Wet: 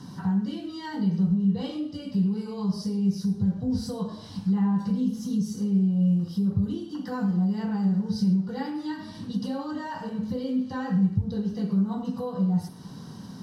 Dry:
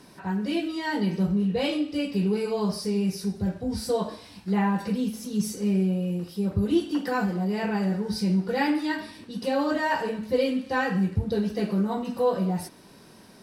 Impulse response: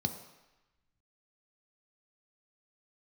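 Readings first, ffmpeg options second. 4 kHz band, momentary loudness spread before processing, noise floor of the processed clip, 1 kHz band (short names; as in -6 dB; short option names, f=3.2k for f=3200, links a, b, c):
-7.0 dB, 5 LU, -42 dBFS, -8.0 dB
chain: -filter_complex "[0:a]acompressor=threshold=-39dB:ratio=3,asplit=2[a][b];[1:a]atrim=start_sample=2205,atrim=end_sample=6174[c];[b][c]afir=irnorm=-1:irlink=0,volume=-2.5dB[d];[a][d]amix=inputs=2:normalize=0,volume=2dB"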